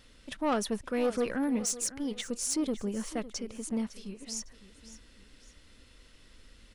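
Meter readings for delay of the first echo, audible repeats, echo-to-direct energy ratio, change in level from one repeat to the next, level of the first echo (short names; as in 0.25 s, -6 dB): 0.556 s, 2, -15.0 dB, -8.5 dB, -15.5 dB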